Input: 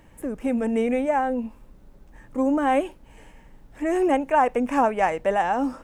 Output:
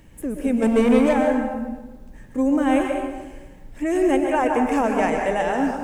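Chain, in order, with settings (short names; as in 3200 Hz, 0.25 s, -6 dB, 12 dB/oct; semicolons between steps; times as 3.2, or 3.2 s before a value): bell 940 Hz -8.5 dB 2 oct; 0.62–1.13 sample leveller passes 2; plate-style reverb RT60 1.2 s, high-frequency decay 0.6×, pre-delay 0.11 s, DRR 2 dB; gain +4.5 dB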